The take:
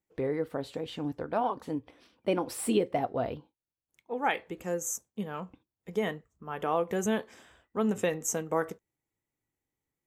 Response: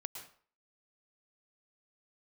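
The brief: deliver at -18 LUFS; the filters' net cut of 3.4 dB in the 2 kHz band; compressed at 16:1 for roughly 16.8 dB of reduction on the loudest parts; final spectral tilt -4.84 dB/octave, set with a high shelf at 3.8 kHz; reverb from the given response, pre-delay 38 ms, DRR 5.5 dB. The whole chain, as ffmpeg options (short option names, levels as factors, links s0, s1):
-filter_complex "[0:a]equalizer=f=2000:t=o:g=-3,highshelf=f=3800:g=-5.5,acompressor=threshold=0.01:ratio=16,asplit=2[s0][s1];[1:a]atrim=start_sample=2205,adelay=38[s2];[s1][s2]afir=irnorm=-1:irlink=0,volume=0.668[s3];[s0][s3]amix=inputs=2:normalize=0,volume=22.4"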